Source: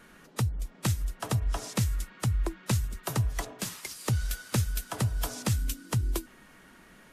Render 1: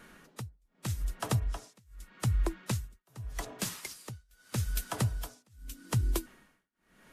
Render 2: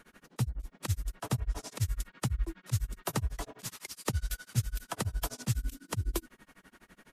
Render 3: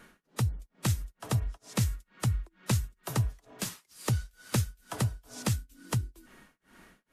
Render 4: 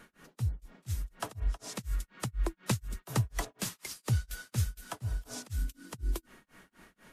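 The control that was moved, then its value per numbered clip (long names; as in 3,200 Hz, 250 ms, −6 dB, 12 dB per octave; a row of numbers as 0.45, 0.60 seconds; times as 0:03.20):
amplitude tremolo, speed: 0.82, 12, 2.2, 4.1 Hertz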